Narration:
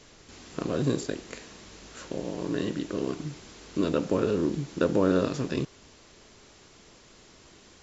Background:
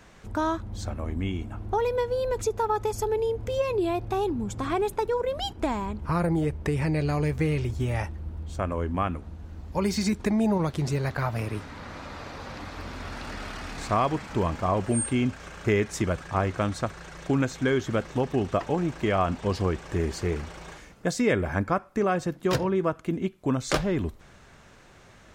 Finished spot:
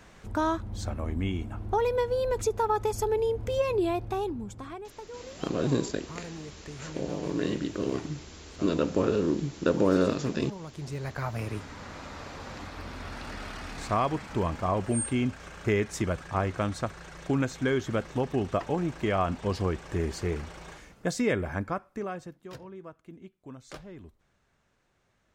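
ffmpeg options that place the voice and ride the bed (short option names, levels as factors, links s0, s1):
-filter_complex "[0:a]adelay=4850,volume=1[s0];[1:a]volume=4.73,afade=t=out:st=3.81:d=1:silence=0.158489,afade=t=in:st=10.6:d=0.91:silence=0.199526,afade=t=out:st=21.17:d=1.29:silence=0.149624[s1];[s0][s1]amix=inputs=2:normalize=0"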